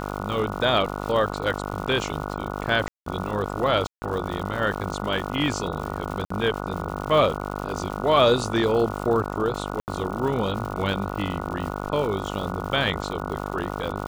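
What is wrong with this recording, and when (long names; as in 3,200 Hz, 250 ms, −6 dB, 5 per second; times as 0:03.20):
mains buzz 50 Hz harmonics 29 −31 dBFS
surface crackle 200 per second −32 dBFS
0:02.88–0:03.06: drop-out 183 ms
0:03.87–0:04.02: drop-out 150 ms
0:06.25–0:06.30: drop-out 54 ms
0:09.80–0:09.88: drop-out 79 ms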